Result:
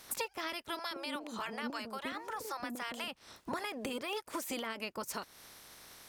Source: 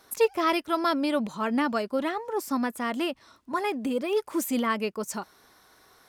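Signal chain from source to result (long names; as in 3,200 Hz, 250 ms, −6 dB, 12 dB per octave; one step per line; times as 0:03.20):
ceiling on every frequency bin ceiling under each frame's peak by 17 dB
downward compressor 12 to 1, threshold −39 dBFS, peak gain reduction 23 dB
0:00.79–0:03.08: multiband delay without the direct sound highs, lows 120 ms, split 520 Hz
level +3.5 dB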